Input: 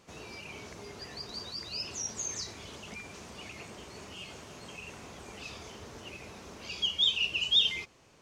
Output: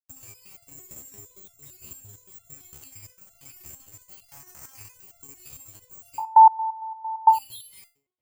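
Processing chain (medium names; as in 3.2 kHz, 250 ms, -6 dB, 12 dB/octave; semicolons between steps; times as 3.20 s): resonant low shelf 160 Hz +11.5 dB, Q 3; de-hum 75.2 Hz, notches 28; crossover distortion -40 dBFS; compression 6:1, threshold -38 dBFS, peak gain reduction 16.5 dB; peak limiter -35.5 dBFS, peak gain reduction 7 dB; 0.65–2.52 s: small resonant body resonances 220/390/3300 Hz, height 9 dB; 4.28–4.94 s: high-order bell 1.3 kHz +9 dB; careless resampling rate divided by 6×, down filtered, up zero stuff; feedback echo behind a band-pass 140 ms, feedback 51%, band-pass 420 Hz, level -15 dB; 6.18–7.29 s: bleep 887 Hz -11.5 dBFS; resonator arpeggio 8.8 Hz 74–690 Hz; trim +5.5 dB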